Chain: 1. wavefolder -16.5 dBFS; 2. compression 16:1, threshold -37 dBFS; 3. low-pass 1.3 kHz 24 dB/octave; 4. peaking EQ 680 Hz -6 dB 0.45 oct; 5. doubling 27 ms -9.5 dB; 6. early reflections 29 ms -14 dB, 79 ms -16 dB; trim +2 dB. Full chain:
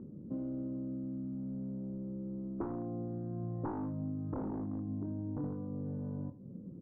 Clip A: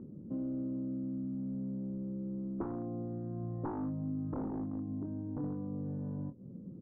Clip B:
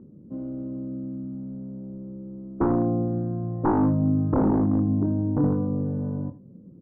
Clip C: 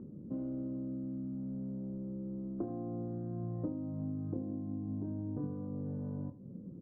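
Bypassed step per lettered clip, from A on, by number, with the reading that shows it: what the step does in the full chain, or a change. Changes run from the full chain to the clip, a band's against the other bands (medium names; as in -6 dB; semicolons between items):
6, echo-to-direct -12.0 dB to none; 2, mean gain reduction 9.5 dB; 1, distortion -5 dB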